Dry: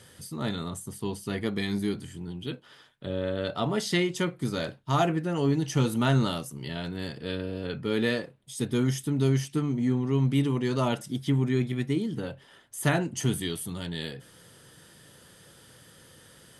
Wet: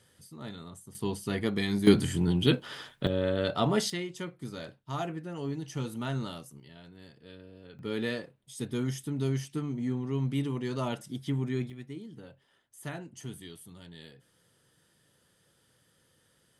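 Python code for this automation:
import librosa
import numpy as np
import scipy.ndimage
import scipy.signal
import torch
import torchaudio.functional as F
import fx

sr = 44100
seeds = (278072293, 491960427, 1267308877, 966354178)

y = fx.gain(x, sr, db=fx.steps((0.0, -11.0), (0.95, 0.0), (1.87, 11.0), (3.07, 1.5), (3.9, -10.0), (6.6, -17.0), (7.79, -6.0), (11.7, -14.5)))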